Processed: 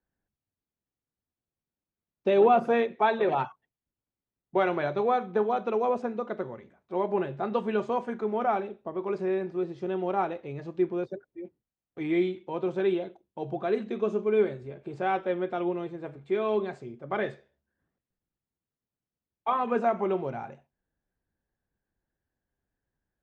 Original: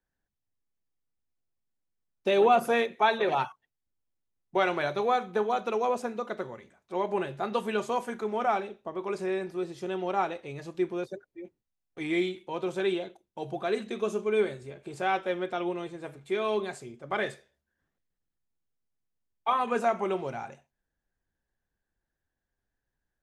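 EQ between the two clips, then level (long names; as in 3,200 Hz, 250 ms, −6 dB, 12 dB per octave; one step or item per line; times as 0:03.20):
high-pass filter 170 Hz 6 dB per octave
high-frequency loss of the air 110 metres
spectral tilt −2.5 dB per octave
0.0 dB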